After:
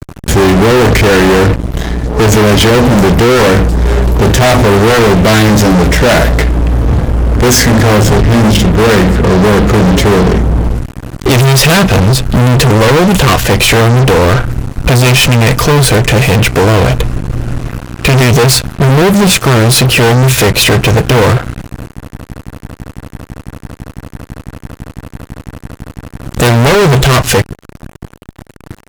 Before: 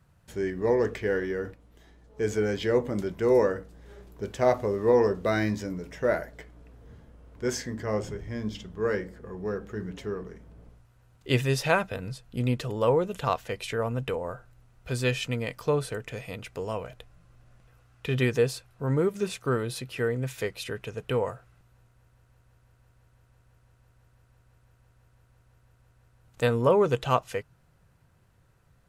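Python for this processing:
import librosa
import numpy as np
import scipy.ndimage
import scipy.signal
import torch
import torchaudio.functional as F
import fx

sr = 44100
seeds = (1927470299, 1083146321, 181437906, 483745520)

p1 = fx.dynamic_eq(x, sr, hz=520.0, q=0.71, threshold_db=-33.0, ratio=4.0, max_db=-5)
p2 = fx.fold_sine(p1, sr, drive_db=18, ceiling_db=-7.0)
p3 = p1 + (p2 * 10.0 ** (-7.0 / 20.0))
p4 = fx.low_shelf(p3, sr, hz=300.0, db=9.0)
p5 = fx.fuzz(p4, sr, gain_db=28.0, gate_db=-34.0)
y = p5 * 10.0 ** (8.0 / 20.0)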